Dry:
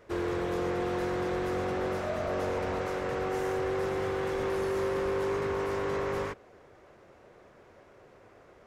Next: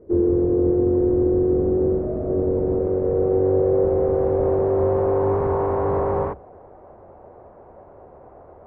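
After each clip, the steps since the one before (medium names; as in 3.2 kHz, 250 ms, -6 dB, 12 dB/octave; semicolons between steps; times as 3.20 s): octave divider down 2 oct, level 0 dB; hum notches 60/120/180 Hz; low-pass sweep 370 Hz -> 810 Hz, 2.48–5.47 s; trim +7 dB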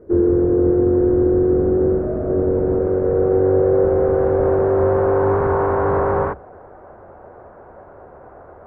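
peaking EQ 1.5 kHz +10 dB 0.63 oct; trim +3 dB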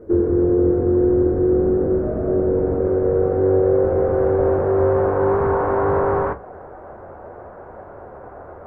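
in parallel at +3 dB: compression, threshold -25 dBFS, peak gain reduction 13 dB; on the sum: flange 0.25 Hz, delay 8.7 ms, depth 9.5 ms, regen -56%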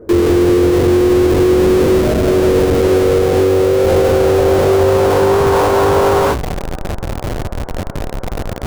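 in parallel at -5 dB: Schmitt trigger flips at -32 dBFS; on the sum: peak limiter -9.5 dBFS, peak gain reduction 4 dB; trim +4.5 dB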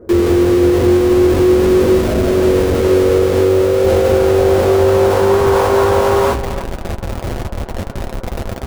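comb of notches 150 Hz; speakerphone echo 300 ms, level -11 dB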